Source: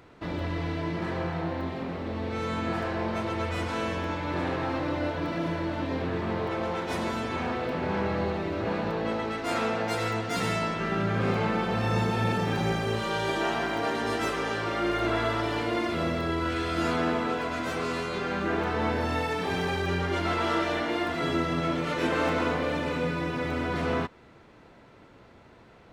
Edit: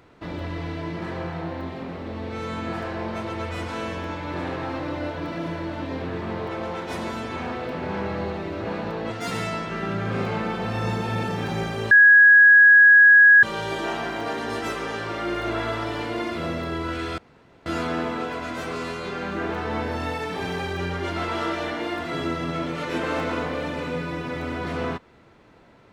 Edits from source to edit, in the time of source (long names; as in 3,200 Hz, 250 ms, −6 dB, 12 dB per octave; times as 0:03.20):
0:09.10–0:10.19: remove
0:13.00: insert tone 1,660 Hz −8.5 dBFS 1.52 s
0:16.75: splice in room tone 0.48 s